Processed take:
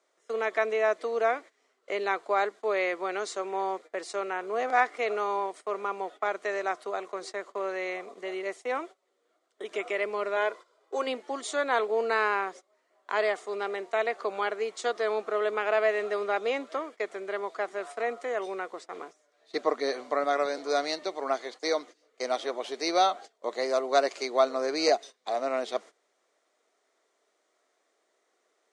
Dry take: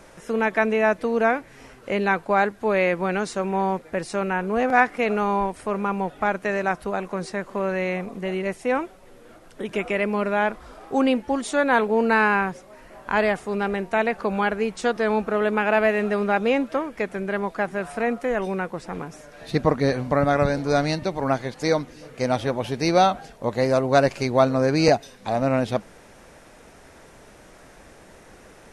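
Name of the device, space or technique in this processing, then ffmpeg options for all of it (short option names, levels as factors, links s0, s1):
phone speaker on a table: -filter_complex "[0:a]agate=range=0.126:threshold=0.0178:ratio=16:detection=peak,highpass=130,asettb=1/sr,asplit=3[s0][s1][s2];[s0]atrim=end=10.364[s3];[s1]atrim=start=10.36:end=11.07,asetpts=PTS-STARTPTS,afade=t=in:d=0.004:c=qsin,afade=t=out:st=0.706:d=0.004:c=qsin,aecho=1:1:2:0.58,atrim=end_sample=31311[s4];[s2]atrim=start=11.066[s5];[s3][s4]acrossfade=d=0.004:c1=hsin:c2=qsin[s6];[s6][s5]acrossfade=d=0.004:c1=qsin:c2=hsin,highpass=f=420:w=0.5412,highpass=f=420:w=1.3066,equalizer=f=530:t=q:w=4:g=-8,equalizer=f=880:t=q:w=4:g=-10,equalizer=f=1600:t=q:w=4:g=-9,equalizer=f=2600:t=q:w=4:g=-9,equalizer=f=5400:t=q:w=4:g=-4,lowpass=f=8000:w=0.5412,lowpass=f=8000:w=1.3066"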